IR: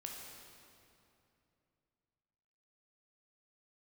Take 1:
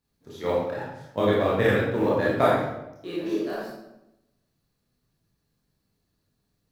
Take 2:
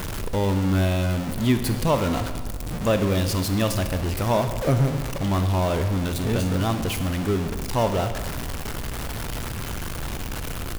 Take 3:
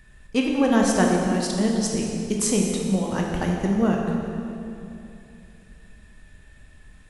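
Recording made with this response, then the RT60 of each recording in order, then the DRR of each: 3; 0.90 s, 1.6 s, 2.8 s; -7.0 dB, 8.0 dB, -1.0 dB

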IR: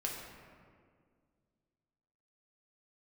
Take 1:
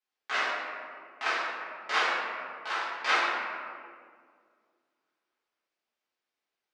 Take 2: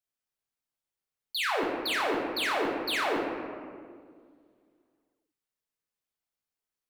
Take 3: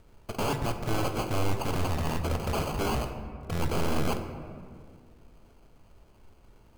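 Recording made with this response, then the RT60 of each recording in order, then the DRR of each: 2; 2.0 s, 2.0 s, 2.0 s; -11.5 dB, -2.0 dB, 6.0 dB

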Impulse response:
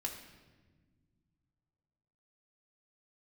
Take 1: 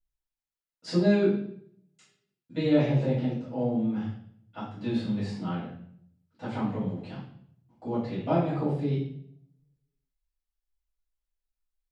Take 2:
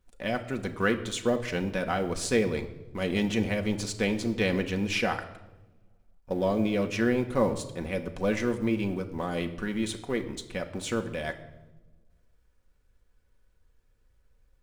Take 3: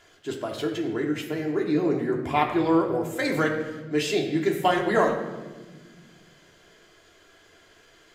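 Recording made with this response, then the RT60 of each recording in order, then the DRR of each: 3; 0.65 s, 1.1 s, 1.4 s; -12.5 dB, 4.5 dB, -0.5 dB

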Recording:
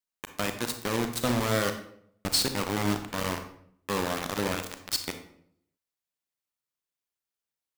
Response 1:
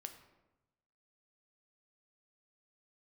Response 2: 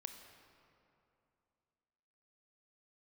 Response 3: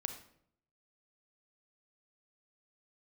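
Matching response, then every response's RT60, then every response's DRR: 3; 1.0 s, 2.7 s, 0.65 s; 6.5 dB, 6.0 dB, 7.0 dB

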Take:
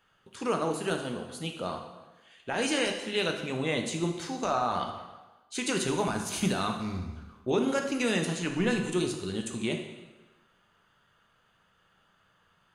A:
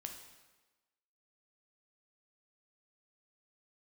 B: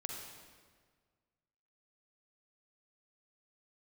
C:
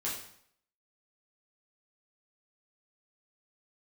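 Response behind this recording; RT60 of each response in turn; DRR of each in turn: A; 1.2 s, 1.7 s, 0.65 s; 3.5 dB, 0.5 dB, -6.5 dB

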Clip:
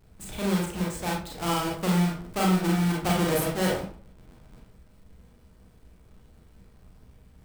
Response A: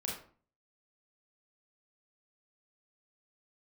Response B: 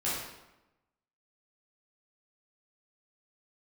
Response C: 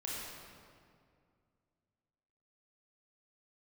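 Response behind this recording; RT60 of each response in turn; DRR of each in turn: A; 0.45 s, 0.95 s, 2.2 s; -3.0 dB, -9.5 dB, -6.0 dB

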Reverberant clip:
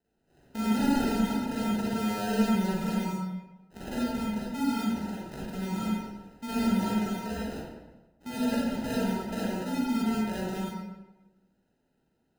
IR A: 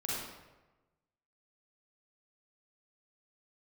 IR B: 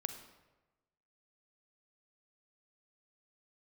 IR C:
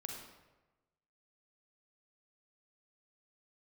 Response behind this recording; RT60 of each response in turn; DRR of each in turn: A; 1.1 s, 1.1 s, 1.1 s; -6.5 dB, 8.0 dB, 1.0 dB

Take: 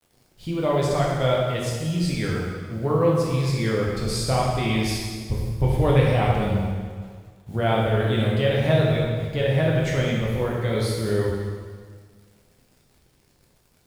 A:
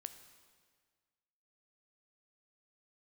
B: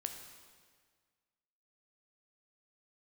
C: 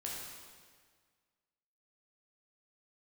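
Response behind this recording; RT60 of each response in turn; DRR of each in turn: C; 1.7 s, 1.7 s, 1.7 s; 9.5 dB, 5.0 dB, -4.0 dB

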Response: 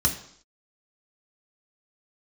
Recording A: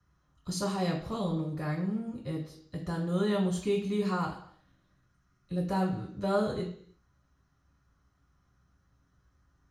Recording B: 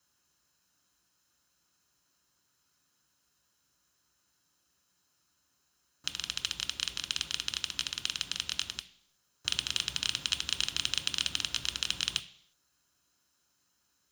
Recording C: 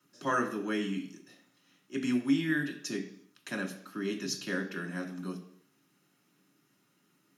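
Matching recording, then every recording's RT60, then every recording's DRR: C; 0.65 s, 0.65 s, 0.65 s; -6.5 dB, 8.5 dB, 0.0 dB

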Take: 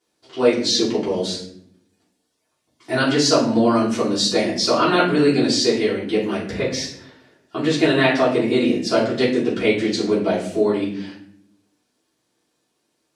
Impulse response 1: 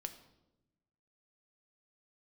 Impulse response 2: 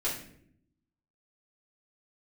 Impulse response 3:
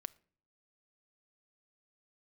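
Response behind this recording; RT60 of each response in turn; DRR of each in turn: 2; 0.95 s, no single decay rate, no single decay rate; 7.5 dB, -9.0 dB, 16.0 dB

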